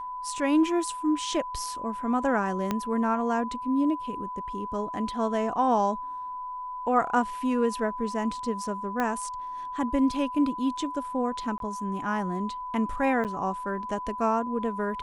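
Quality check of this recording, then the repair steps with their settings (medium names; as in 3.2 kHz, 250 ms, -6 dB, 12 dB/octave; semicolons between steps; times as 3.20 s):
whine 1 kHz -33 dBFS
2.71 s: pop -13 dBFS
9.00 s: pop -15 dBFS
11.58–11.60 s: dropout 22 ms
13.24–13.25 s: dropout 8.5 ms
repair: de-click; band-stop 1 kHz, Q 30; interpolate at 11.58 s, 22 ms; interpolate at 13.24 s, 8.5 ms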